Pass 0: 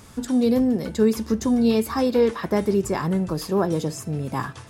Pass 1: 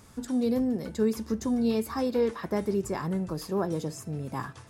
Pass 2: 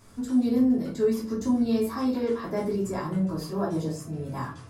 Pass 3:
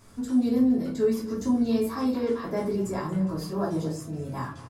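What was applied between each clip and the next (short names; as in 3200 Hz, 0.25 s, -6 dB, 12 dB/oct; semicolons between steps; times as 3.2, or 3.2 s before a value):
bell 3100 Hz -2.5 dB; gain -7 dB
shoebox room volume 200 m³, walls furnished, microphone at 3 m; gain -6 dB
echo 0.231 s -17 dB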